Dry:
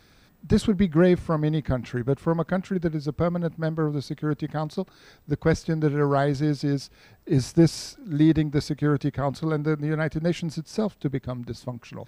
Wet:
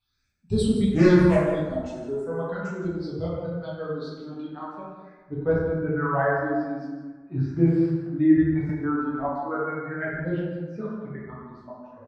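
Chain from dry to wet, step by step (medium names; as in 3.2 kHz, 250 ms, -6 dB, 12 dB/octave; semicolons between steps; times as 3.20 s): expander on every frequency bin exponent 1.5; bass shelf 170 Hz -5 dB; 0.91–1.43 s: waveshaping leveller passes 3; phase shifter stages 6, 0.41 Hz, lowest notch 110–1900 Hz; 7.56–8.07 s: word length cut 8-bit, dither none; low-pass sweep 8 kHz -> 1.6 kHz, 2.46–5.57 s; on a send: delay 165 ms -12.5 dB; on the sum: plate-style reverb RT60 1.4 s, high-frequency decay 0.45×, DRR -7 dB; 8.69–9.29 s: three bands compressed up and down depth 70%; trim -5 dB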